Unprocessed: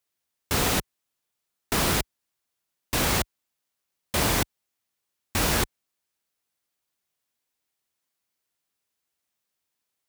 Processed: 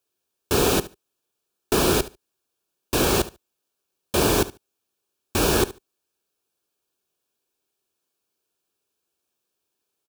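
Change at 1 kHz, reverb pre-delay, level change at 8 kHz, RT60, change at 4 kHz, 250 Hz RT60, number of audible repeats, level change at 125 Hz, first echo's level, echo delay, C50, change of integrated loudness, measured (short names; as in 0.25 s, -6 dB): +2.5 dB, none, +1.5 dB, none, +1.5 dB, none, 2, +2.0 dB, -17.0 dB, 72 ms, none, +3.0 dB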